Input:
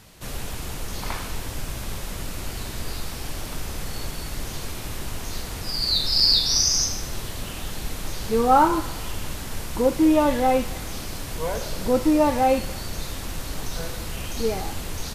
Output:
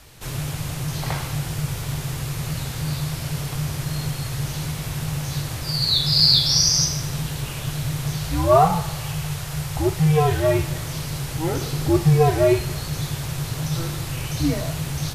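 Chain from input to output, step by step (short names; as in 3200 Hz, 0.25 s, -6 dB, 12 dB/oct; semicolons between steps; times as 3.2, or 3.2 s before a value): frequency shift -160 Hz; 8.16–10.59 bell 260 Hz -12.5 dB 0.64 oct; gain +2.5 dB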